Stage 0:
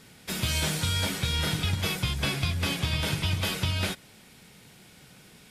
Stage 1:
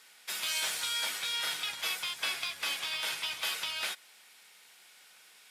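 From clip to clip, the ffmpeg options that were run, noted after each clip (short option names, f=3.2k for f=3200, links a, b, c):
-filter_complex "[0:a]highpass=960,asplit=2[a][b];[b]acrusher=bits=4:mode=log:mix=0:aa=0.000001,volume=-5dB[c];[a][c]amix=inputs=2:normalize=0,volume=-6dB"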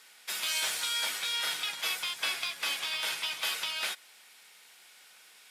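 -af "equalizer=f=82:t=o:w=1:g=-11,volume=1.5dB"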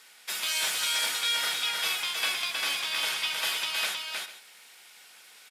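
-af "aecho=1:1:315|449:0.668|0.15,volume=2dB"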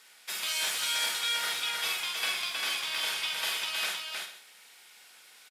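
-filter_complex "[0:a]asplit=2[a][b];[b]adelay=49,volume=-7.5dB[c];[a][c]amix=inputs=2:normalize=0,volume=-3dB"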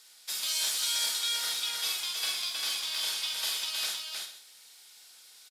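-af "highshelf=f=3.2k:t=q:w=1.5:g=7.5,volume=-5.5dB"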